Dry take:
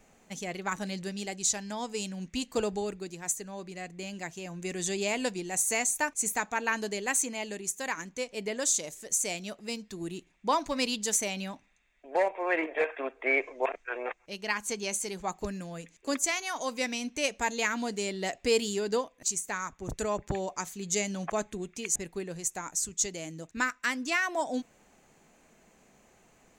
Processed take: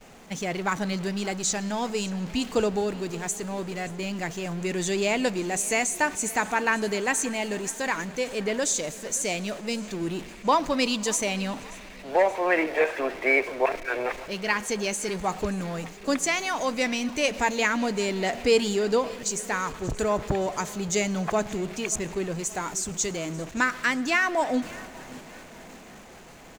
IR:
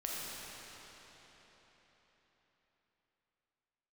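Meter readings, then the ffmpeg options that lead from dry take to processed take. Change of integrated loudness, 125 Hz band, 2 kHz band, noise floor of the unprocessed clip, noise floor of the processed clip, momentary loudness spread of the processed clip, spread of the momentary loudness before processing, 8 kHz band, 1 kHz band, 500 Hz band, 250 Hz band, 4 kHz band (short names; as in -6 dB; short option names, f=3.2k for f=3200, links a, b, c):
+5.0 dB, +8.0 dB, +5.5 dB, -63 dBFS, -45 dBFS, 9 LU, 11 LU, +0.5 dB, +6.0 dB, +6.5 dB, +7.5 dB, +4.5 dB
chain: -filter_complex "[0:a]aeval=exprs='val(0)+0.5*0.0119*sgn(val(0))':c=same,aecho=1:1:578|1156|1734|2312:0.1|0.056|0.0314|0.0176,agate=range=-33dB:threshold=-38dB:ratio=3:detection=peak,highshelf=f=7.2k:g=-11,asplit=2[a][b];[1:a]atrim=start_sample=2205,adelay=108[c];[b][c]afir=irnorm=-1:irlink=0,volume=-22.5dB[d];[a][d]amix=inputs=2:normalize=0,volume=5dB"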